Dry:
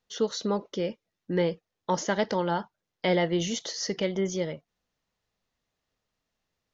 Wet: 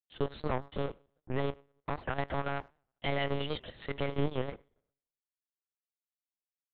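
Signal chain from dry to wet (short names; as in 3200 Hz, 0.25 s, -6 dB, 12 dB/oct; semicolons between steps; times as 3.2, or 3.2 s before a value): bin magnitudes rounded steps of 30 dB; notches 50/100/150/200/250/300/350/400 Hz; limiter -22 dBFS, peak gain reduction 9 dB; reverb RT60 1.4 s, pre-delay 3 ms, DRR 13 dB; power-law curve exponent 2; monotone LPC vocoder at 8 kHz 140 Hz; speakerphone echo 0.1 s, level -28 dB; record warp 78 rpm, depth 160 cents; gain +4 dB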